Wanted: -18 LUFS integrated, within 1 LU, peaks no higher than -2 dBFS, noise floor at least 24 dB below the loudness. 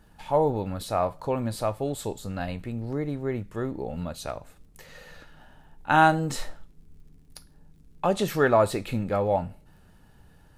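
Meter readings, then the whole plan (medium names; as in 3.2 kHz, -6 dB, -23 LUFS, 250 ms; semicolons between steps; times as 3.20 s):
tick rate 34 per s; loudness -27.0 LUFS; peak level -7.0 dBFS; loudness target -18.0 LUFS
-> de-click; trim +9 dB; peak limiter -2 dBFS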